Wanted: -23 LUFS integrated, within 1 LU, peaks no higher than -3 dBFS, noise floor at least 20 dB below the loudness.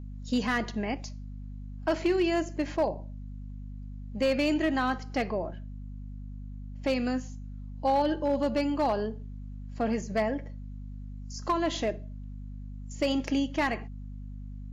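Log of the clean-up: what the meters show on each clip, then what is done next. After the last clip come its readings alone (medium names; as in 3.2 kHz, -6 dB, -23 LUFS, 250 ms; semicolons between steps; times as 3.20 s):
clipped samples 0.7%; clipping level -19.5 dBFS; hum 50 Hz; highest harmonic 250 Hz; hum level -38 dBFS; loudness -29.5 LUFS; peak level -19.5 dBFS; loudness target -23.0 LUFS
-> clip repair -19.5 dBFS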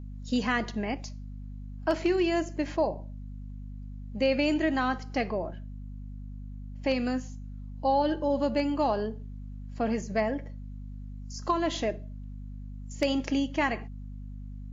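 clipped samples 0.0%; hum 50 Hz; highest harmonic 250 Hz; hum level -37 dBFS
-> hum notches 50/100/150/200/250 Hz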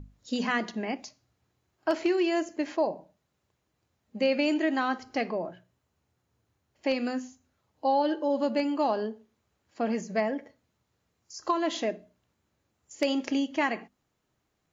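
hum not found; loudness -29.5 LUFS; peak level -11.0 dBFS; loudness target -23.0 LUFS
-> trim +6.5 dB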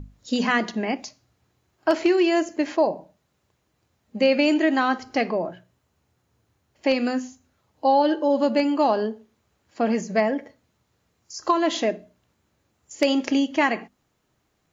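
loudness -23.0 LUFS; peak level -4.5 dBFS; noise floor -71 dBFS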